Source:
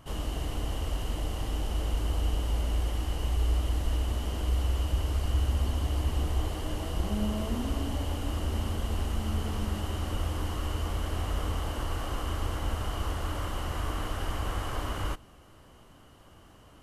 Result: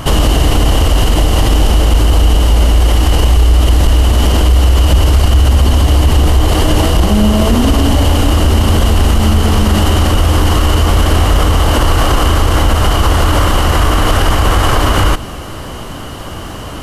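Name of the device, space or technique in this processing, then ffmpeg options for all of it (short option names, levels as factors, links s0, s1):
mastering chain: -af "equalizer=f=4500:t=o:w=0.77:g=2,acompressor=threshold=0.0316:ratio=2,asoftclip=type=hard:threshold=0.0631,alimiter=level_in=33.5:limit=0.891:release=50:level=0:latency=1,volume=0.891"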